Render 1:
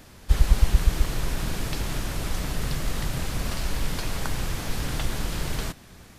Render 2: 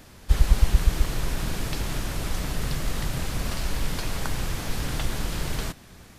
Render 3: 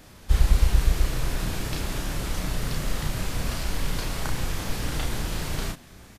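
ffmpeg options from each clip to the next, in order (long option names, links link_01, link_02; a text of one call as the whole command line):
ffmpeg -i in.wav -af anull out.wav
ffmpeg -i in.wav -filter_complex "[0:a]asplit=2[link_01][link_02];[link_02]adelay=33,volume=-3.5dB[link_03];[link_01][link_03]amix=inputs=2:normalize=0,volume=-1.5dB" out.wav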